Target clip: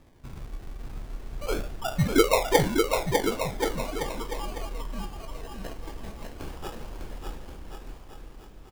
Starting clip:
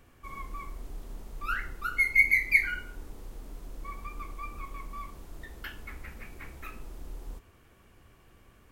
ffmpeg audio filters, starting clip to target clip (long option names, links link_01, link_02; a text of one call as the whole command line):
ffmpeg -i in.wav -filter_complex "[0:a]asettb=1/sr,asplit=3[link_01][link_02][link_03];[link_01]atrim=end=6.384[link_04];[link_02]atrim=start=6.38:end=6.97,asetpts=PTS-STARTPTS,afade=type=in:duration=0.004:curve=qsin,afade=type=out:start_time=0.586:duration=0.004:curve=qsin,highshelf=frequency=2000:gain=10.5[link_05];[link_03]atrim=start=6.966[link_06];[link_04][link_05]acrossfade=duration=0.004:curve1=hsin:curve2=qsin[link_07];[link_07][link_06]acrossfade=duration=0.004:curve1=qsin:curve2=hsin,acrusher=samples=30:mix=1:aa=0.000001:lfo=1:lforange=18:lforate=0.41,aecho=1:1:600|1080|1464|1771|2017:0.631|0.398|0.251|0.158|0.1,volume=2dB" out.wav